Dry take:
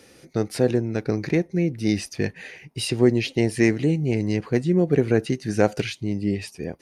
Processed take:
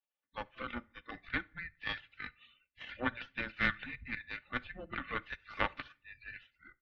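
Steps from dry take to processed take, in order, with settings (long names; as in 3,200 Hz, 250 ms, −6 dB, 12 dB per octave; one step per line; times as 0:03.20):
noise reduction from a noise print of the clip's start 30 dB
gate on every frequency bin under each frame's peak −20 dB weak
comb filter 3.3 ms, depth 55%
harmonic generator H 2 −8 dB, 3 −22 dB, 6 −23 dB, 7 −30 dB, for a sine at −15 dBFS
on a send at −19 dB: convolution reverb, pre-delay 5 ms
on the sum: single-sideband voice off tune −360 Hz 250–3,600 Hz
level +3 dB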